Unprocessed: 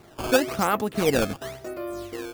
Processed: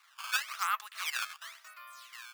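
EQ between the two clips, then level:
Chebyshev high-pass filter 1,100 Hz, order 4
low-pass filter 2,400 Hz 6 dB per octave
spectral tilt +3 dB per octave
−4.5 dB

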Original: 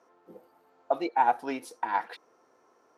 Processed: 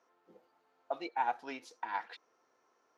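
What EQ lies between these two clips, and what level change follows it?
high-frequency loss of the air 230 metres
first-order pre-emphasis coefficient 0.9
parametric band 7,000 Hz +6 dB 0.43 octaves
+8.0 dB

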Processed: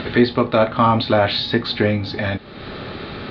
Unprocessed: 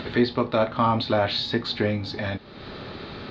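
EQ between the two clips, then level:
high-frequency loss of the air 250 metres
high-shelf EQ 2,300 Hz +7.5 dB
notch filter 970 Hz, Q 16
+6.5 dB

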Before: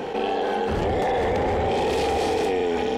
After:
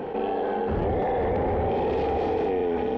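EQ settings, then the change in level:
head-to-tape spacing loss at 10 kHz 39 dB
0.0 dB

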